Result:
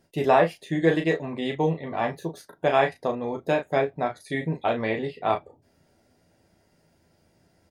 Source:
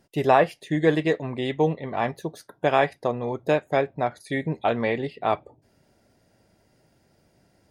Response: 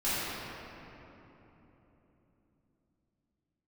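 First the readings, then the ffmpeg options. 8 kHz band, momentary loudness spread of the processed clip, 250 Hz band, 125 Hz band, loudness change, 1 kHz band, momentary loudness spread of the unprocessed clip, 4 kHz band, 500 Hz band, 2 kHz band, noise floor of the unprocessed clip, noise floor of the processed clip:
n/a, 9 LU, -1.0 dB, -1.0 dB, -1.0 dB, -1.0 dB, 9 LU, -0.5 dB, -1.0 dB, -0.5 dB, -65 dBFS, -66 dBFS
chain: -af "aecho=1:1:12|36:0.473|0.473,volume=-2.5dB"

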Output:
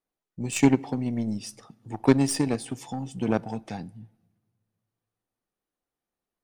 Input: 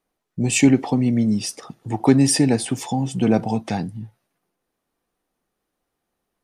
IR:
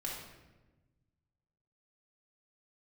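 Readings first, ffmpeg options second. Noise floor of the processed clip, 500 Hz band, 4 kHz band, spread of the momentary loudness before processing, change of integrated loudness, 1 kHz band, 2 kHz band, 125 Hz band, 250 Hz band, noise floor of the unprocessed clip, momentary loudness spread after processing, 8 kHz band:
under -85 dBFS, -5.0 dB, -9.5 dB, 15 LU, -6.5 dB, -6.5 dB, -6.5 dB, -8.0 dB, -7.0 dB, -79 dBFS, 17 LU, -10.0 dB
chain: -filter_complex "[0:a]aeval=exprs='0.75*(cos(1*acos(clip(val(0)/0.75,-1,1)))-cos(1*PI/2))+0.188*(cos(3*acos(clip(val(0)/0.75,-1,1)))-cos(3*PI/2))+0.0168*(cos(4*acos(clip(val(0)/0.75,-1,1)))-cos(4*PI/2))':c=same,asoftclip=type=tanh:threshold=-4dB,asplit=2[a][b];[1:a]atrim=start_sample=2205[c];[b][c]afir=irnorm=-1:irlink=0,volume=-24dB[d];[a][d]amix=inputs=2:normalize=0"

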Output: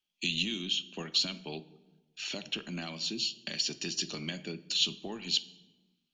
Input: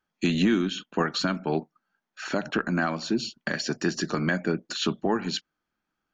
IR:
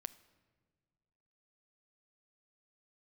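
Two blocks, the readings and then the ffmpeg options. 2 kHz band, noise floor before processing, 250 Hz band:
-10.0 dB, -84 dBFS, -14.5 dB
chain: -filter_complex "[0:a]highshelf=f=2.1k:t=q:w=3:g=11.5,acrossover=split=180|3000[a][b][c];[b]acompressor=threshold=-24dB:ratio=6[d];[a][d][c]amix=inputs=3:normalize=0[e];[1:a]atrim=start_sample=2205,asetrate=61740,aresample=44100[f];[e][f]afir=irnorm=-1:irlink=0,volume=-5.5dB"

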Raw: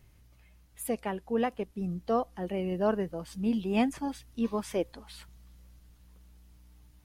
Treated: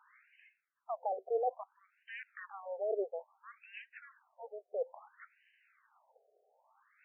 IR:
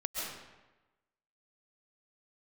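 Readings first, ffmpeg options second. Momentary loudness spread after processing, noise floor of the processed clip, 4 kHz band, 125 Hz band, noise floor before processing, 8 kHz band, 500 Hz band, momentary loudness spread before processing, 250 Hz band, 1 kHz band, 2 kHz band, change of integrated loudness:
22 LU, -81 dBFS, under -15 dB, under -40 dB, -59 dBFS, under -30 dB, -6.0 dB, 9 LU, under -25 dB, -5.5 dB, -6.5 dB, -8.0 dB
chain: -af "asoftclip=type=tanh:threshold=-28.5dB,asubboost=boost=8.5:cutoff=88,aexciter=amount=14.6:drive=8.3:freq=5.2k,areverse,acompressor=threshold=-41dB:ratio=8,areverse,afftfilt=real='re*between(b*sr/1024,530*pow(2200/530,0.5+0.5*sin(2*PI*0.59*pts/sr))/1.41,530*pow(2200/530,0.5+0.5*sin(2*PI*0.59*pts/sr))*1.41)':imag='im*between(b*sr/1024,530*pow(2200/530,0.5+0.5*sin(2*PI*0.59*pts/sr))/1.41,530*pow(2200/530,0.5+0.5*sin(2*PI*0.59*pts/sr))*1.41)':win_size=1024:overlap=0.75,volume=14.5dB"

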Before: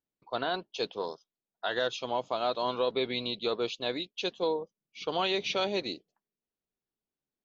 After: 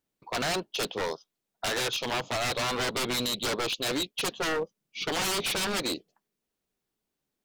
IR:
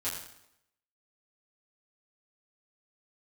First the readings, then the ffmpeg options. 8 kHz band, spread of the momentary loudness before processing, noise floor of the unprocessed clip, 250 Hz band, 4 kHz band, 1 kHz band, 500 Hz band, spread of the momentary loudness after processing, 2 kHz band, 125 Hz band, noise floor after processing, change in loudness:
n/a, 9 LU, under -85 dBFS, +2.5 dB, +4.5 dB, +1.0 dB, -1.5 dB, 7 LU, +6.0 dB, +7.5 dB, -85 dBFS, +2.5 dB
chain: -af "aeval=exprs='0.133*(cos(1*acos(clip(val(0)/0.133,-1,1)))-cos(1*PI/2))+0.00596*(cos(4*acos(clip(val(0)/0.133,-1,1)))-cos(4*PI/2))':c=same,aeval=exprs='0.0251*(abs(mod(val(0)/0.0251+3,4)-2)-1)':c=same,volume=8.5dB"

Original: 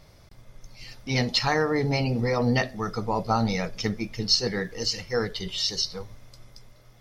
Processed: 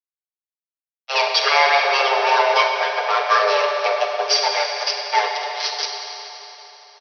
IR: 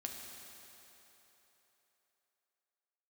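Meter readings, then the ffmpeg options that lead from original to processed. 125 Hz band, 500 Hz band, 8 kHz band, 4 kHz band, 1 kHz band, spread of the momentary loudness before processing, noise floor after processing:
under -40 dB, +7.0 dB, +4.0 dB, +6.5 dB, +13.5 dB, 8 LU, under -85 dBFS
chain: -filter_complex "[0:a]aresample=11025,acrusher=bits=3:mix=0:aa=0.5,aresample=44100,afreqshift=400,aecho=1:1:6.7:0.81[a];[1:a]atrim=start_sample=2205[b];[a][b]afir=irnorm=-1:irlink=0,volume=7.5dB"

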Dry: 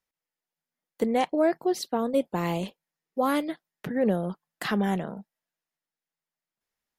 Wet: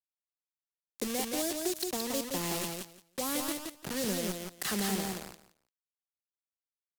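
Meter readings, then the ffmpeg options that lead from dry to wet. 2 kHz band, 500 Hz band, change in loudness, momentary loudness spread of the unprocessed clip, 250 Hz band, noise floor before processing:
-4.0 dB, -9.5 dB, -6.0 dB, 12 LU, -8.0 dB, under -85 dBFS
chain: -filter_complex "[0:a]equalizer=f=370:t=o:w=0.29:g=5,acrusher=bits=4:mix=0:aa=0.000001,acrossover=split=240|3000[a][b][c];[b]acompressor=threshold=-27dB:ratio=6[d];[a][d][c]amix=inputs=3:normalize=0,equalizer=f=11k:t=o:w=2.5:g=9.5,aecho=1:1:172|344|516:0.631|0.101|0.0162,volume=-8dB"

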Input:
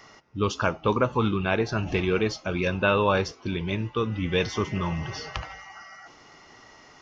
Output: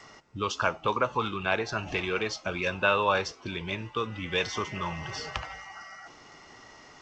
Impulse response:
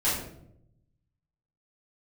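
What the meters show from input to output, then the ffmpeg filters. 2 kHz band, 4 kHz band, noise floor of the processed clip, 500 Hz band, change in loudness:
0.0 dB, 0.0 dB, -53 dBFS, -5.0 dB, -3.5 dB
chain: -filter_complex "[0:a]acrossover=split=540|820[a][b][c];[a]acompressor=threshold=-37dB:ratio=4[d];[d][b][c]amix=inputs=3:normalize=0" -ar 16000 -c:a g722

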